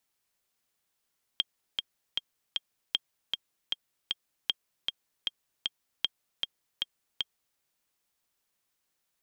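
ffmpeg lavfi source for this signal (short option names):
-f lavfi -i "aevalsrc='pow(10,(-12.5-3.5*gte(mod(t,4*60/155),60/155))/20)*sin(2*PI*3220*mod(t,60/155))*exp(-6.91*mod(t,60/155)/0.03)':d=6.19:s=44100"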